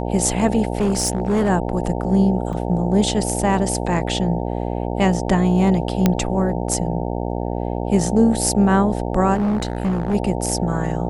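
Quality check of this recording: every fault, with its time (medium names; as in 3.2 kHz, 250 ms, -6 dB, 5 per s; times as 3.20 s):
buzz 60 Hz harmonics 15 -24 dBFS
0.77–1.50 s: clipped -14 dBFS
2.53 s: dropout 4.2 ms
6.06 s: pop -2 dBFS
9.34–10.15 s: clipped -16.5 dBFS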